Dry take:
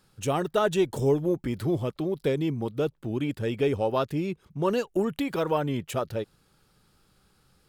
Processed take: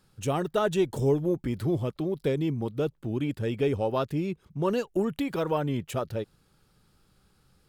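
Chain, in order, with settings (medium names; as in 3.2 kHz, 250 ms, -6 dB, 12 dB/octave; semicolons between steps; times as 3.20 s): bass shelf 270 Hz +4 dB; trim -2.5 dB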